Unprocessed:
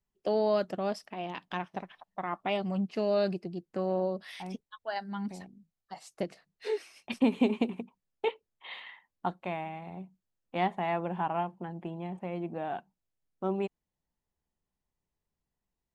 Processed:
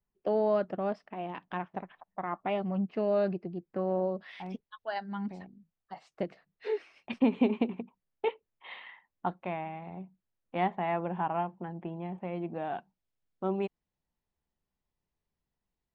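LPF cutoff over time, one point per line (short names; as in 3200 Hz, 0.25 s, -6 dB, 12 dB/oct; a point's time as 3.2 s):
4.03 s 2000 Hz
4.87 s 4400 Hz
5.2 s 2700 Hz
12.01 s 2700 Hz
12.61 s 4800 Hz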